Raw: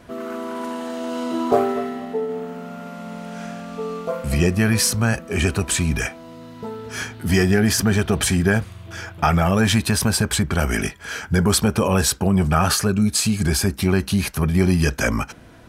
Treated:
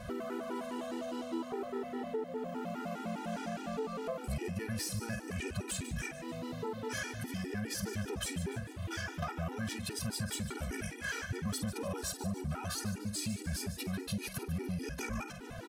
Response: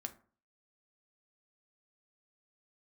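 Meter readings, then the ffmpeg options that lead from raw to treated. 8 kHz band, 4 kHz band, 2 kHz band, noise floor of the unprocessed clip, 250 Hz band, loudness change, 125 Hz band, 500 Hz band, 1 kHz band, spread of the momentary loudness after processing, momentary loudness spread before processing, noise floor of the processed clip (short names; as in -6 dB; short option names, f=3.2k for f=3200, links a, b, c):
-17.5 dB, -17.0 dB, -16.5 dB, -42 dBFS, -18.0 dB, -18.0 dB, -18.5 dB, -16.5 dB, -17.0 dB, 3 LU, 15 LU, -46 dBFS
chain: -filter_complex "[0:a]alimiter=limit=-8.5dB:level=0:latency=1:release=375,asplit=2[a][b];[b]adelay=49,volume=-12dB[c];[a][c]amix=inputs=2:normalize=0,aeval=exprs='0.447*(cos(1*acos(clip(val(0)/0.447,-1,1)))-cos(1*PI/2))+0.0501*(cos(5*acos(clip(val(0)/0.447,-1,1)))-cos(5*PI/2))':c=same,acompressor=threshold=-32dB:ratio=16,asoftclip=type=hard:threshold=-28dB,asplit=2[d][e];[e]asplit=5[f][g][h][i][j];[f]adelay=147,afreqshift=90,volume=-12dB[k];[g]adelay=294,afreqshift=180,volume=-17.8dB[l];[h]adelay=441,afreqshift=270,volume=-23.7dB[m];[i]adelay=588,afreqshift=360,volume=-29.5dB[n];[j]adelay=735,afreqshift=450,volume=-35.4dB[o];[k][l][m][n][o]amix=inputs=5:normalize=0[p];[d][p]amix=inputs=2:normalize=0,afftfilt=real='re*gt(sin(2*PI*4.9*pts/sr)*(1-2*mod(floor(b*sr/1024/250),2)),0)':imag='im*gt(sin(2*PI*4.9*pts/sr)*(1-2*mod(floor(b*sr/1024/250),2)),0)':win_size=1024:overlap=0.75"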